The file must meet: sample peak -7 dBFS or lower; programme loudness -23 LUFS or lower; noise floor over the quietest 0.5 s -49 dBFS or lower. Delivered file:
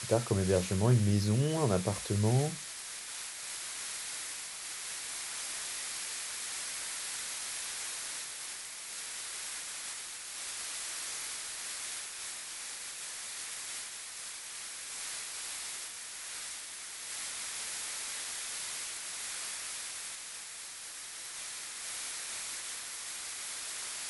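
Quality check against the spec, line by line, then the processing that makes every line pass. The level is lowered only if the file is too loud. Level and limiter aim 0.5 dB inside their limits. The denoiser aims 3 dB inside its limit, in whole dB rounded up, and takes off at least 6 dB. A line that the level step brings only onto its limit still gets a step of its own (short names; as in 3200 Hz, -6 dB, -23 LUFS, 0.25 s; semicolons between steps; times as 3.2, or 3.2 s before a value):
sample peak -14.0 dBFS: OK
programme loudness -36.0 LUFS: OK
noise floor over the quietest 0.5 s -45 dBFS: fail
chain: denoiser 7 dB, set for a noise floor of -45 dBFS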